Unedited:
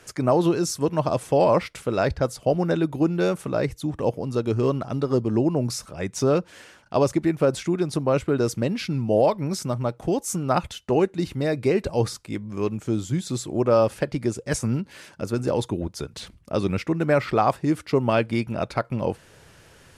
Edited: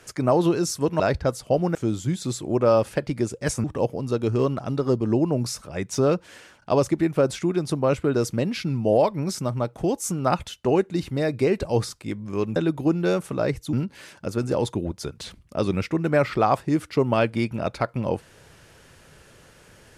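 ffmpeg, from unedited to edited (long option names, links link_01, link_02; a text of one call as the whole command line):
ffmpeg -i in.wav -filter_complex "[0:a]asplit=6[link_01][link_02][link_03][link_04][link_05][link_06];[link_01]atrim=end=1.002[link_07];[link_02]atrim=start=1.958:end=2.712[link_08];[link_03]atrim=start=12.798:end=14.692[link_09];[link_04]atrim=start=3.878:end=12.802[link_10];[link_05]atrim=start=2.708:end=3.882[link_11];[link_06]atrim=start=14.688[link_12];[link_07][link_08]acrossfade=duration=0.004:curve1=hsin:curve2=hsin[link_13];[link_13][link_09]acrossfade=duration=0.004:curve1=hsin:curve2=hsin[link_14];[link_14][link_10]acrossfade=duration=0.004:curve1=hsin:curve2=hsin[link_15];[link_15][link_11]acrossfade=duration=0.004:curve1=hsin:curve2=hsin[link_16];[link_16][link_12]acrossfade=duration=0.004:curve1=hsin:curve2=hsin" out.wav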